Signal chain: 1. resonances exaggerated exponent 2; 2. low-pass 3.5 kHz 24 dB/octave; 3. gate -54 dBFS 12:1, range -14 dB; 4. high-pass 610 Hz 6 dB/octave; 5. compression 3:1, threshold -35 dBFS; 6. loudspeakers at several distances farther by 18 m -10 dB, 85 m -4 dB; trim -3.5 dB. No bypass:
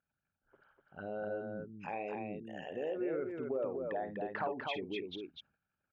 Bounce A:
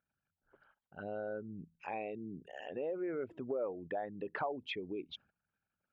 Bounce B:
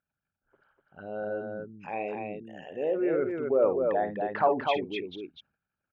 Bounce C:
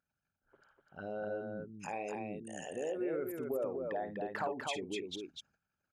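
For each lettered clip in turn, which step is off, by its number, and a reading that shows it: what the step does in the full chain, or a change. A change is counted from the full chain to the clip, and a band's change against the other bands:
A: 6, echo-to-direct -3.0 dB to none; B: 5, mean gain reduction 6.0 dB; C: 2, 4 kHz band +2.0 dB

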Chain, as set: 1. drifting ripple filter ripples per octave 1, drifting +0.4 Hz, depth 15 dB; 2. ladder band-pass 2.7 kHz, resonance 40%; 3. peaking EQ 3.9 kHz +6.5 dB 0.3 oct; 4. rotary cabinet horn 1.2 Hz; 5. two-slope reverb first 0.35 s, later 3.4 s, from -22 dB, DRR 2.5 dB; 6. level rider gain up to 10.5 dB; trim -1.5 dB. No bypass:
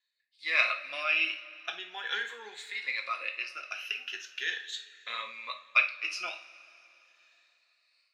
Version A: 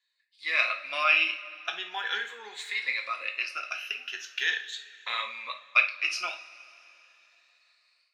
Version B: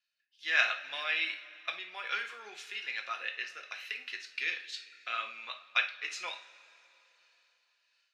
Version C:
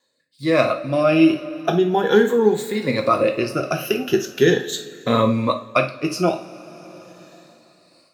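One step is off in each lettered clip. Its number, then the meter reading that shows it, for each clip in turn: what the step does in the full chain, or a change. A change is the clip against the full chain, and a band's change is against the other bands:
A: 4, loudness change +3.0 LU; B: 1, 500 Hz band -2.0 dB; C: 2, 500 Hz band +19.5 dB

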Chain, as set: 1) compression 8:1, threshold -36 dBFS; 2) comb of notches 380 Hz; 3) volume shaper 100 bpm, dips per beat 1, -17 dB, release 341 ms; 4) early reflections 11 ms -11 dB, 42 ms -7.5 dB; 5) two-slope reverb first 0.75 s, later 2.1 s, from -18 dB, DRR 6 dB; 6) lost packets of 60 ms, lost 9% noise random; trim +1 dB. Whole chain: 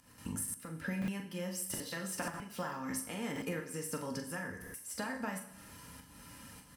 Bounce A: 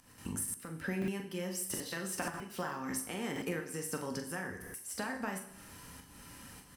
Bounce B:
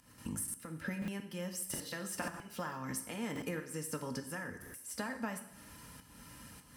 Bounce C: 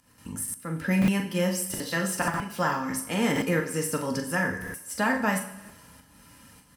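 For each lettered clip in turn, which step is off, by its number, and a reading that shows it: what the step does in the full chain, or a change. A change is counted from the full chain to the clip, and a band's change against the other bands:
2, crest factor change +1.5 dB; 4, loudness change -1.0 LU; 1, momentary loudness spread change -5 LU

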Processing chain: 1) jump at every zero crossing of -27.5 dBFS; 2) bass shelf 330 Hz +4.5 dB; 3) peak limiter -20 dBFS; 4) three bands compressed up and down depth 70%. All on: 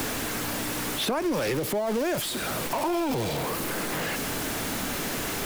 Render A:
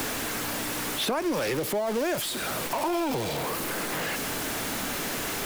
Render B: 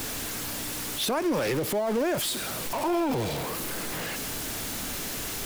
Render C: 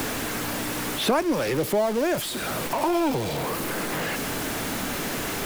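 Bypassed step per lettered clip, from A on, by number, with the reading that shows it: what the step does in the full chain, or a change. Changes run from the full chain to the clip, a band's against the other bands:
2, 125 Hz band -3.5 dB; 4, crest factor change -3.5 dB; 3, crest factor change +3.5 dB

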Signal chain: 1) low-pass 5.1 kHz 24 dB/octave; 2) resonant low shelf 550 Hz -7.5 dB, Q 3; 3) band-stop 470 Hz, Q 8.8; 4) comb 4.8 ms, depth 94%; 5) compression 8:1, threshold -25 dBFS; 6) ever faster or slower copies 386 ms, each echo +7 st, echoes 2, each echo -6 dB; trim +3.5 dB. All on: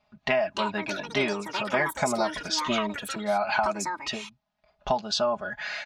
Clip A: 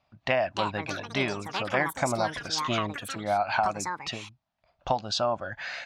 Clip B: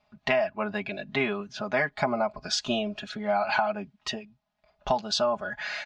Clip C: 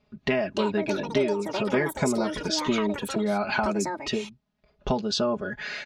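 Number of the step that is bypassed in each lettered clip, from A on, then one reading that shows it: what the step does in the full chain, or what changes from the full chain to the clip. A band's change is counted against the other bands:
4, 125 Hz band +6.0 dB; 6, 8 kHz band -3.5 dB; 2, momentary loudness spread change -1 LU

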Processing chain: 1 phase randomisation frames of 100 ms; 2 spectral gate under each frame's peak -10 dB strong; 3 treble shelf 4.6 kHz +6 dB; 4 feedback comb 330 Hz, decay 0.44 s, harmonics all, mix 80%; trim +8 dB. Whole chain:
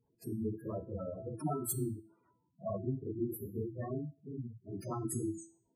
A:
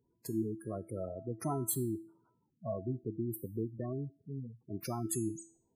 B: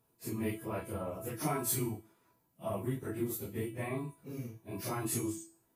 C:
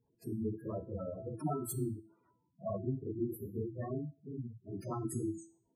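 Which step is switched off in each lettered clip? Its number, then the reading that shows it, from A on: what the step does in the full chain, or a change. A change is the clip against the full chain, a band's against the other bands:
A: 1, 8 kHz band +2.5 dB; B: 2, 2 kHz band +16.5 dB; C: 3, 8 kHz band -5.0 dB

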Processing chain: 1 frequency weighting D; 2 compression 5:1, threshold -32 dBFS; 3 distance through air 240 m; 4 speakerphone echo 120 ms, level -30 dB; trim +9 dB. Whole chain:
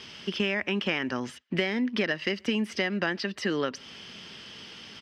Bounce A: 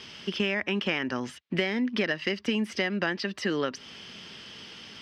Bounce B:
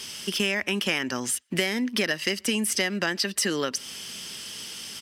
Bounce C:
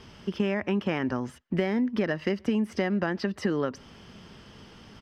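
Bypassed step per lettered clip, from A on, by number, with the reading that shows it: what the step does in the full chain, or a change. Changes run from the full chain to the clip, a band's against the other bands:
4, echo-to-direct -35.0 dB to none; 3, 8 kHz band +18.5 dB; 1, 4 kHz band -11.0 dB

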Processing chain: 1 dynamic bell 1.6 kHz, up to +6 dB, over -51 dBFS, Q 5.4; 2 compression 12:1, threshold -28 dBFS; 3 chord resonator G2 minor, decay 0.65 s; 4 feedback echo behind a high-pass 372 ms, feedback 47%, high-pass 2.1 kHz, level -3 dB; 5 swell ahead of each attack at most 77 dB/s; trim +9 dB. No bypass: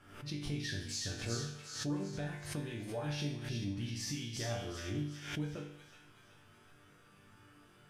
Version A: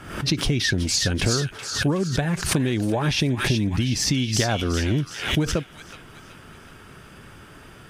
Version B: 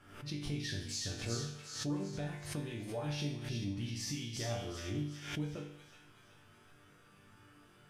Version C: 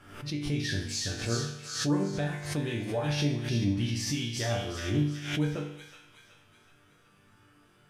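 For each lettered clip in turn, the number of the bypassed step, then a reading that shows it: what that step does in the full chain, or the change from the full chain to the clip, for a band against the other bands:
3, loudness change +16.5 LU; 1, 2 kHz band -1.5 dB; 2, mean gain reduction 5.0 dB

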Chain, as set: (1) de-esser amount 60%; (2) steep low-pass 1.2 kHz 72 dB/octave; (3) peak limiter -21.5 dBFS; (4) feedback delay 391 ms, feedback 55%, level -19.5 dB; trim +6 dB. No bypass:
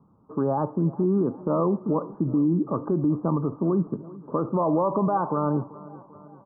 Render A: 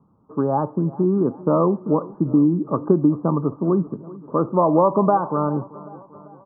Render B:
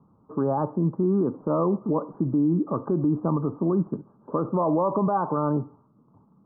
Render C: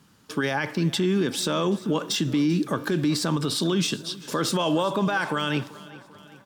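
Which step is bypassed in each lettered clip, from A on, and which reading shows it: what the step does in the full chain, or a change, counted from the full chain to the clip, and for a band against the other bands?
3, mean gain reduction 2.5 dB; 4, echo-to-direct -18.0 dB to none; 2, momentary loudness spread change -2 LU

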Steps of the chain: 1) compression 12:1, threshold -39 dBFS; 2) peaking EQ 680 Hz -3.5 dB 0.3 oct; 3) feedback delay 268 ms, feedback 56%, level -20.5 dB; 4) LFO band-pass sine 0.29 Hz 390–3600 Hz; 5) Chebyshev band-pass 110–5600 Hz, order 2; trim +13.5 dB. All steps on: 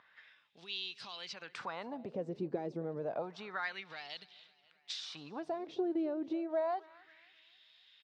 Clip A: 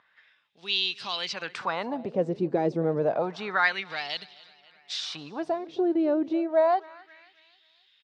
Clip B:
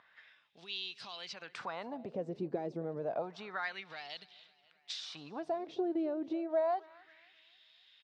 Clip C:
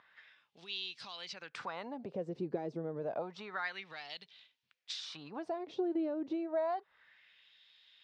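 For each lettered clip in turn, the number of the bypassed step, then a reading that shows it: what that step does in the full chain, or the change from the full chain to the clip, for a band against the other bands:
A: 1, mean gain reduction 8.0 dB; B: 2, 1 kHz band +1.5 dB; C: 3, momentary loudness spread change -2 LU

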